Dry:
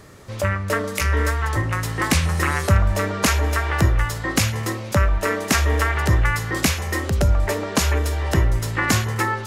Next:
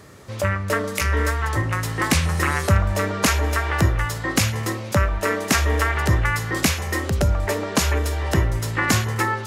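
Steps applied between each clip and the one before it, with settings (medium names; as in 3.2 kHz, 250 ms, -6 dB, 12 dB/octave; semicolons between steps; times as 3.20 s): high-pass 58 Hz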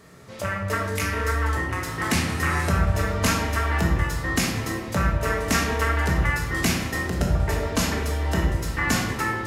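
simulated room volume 490 m³, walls mixed, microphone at 1.6 m; trim -6.5 dB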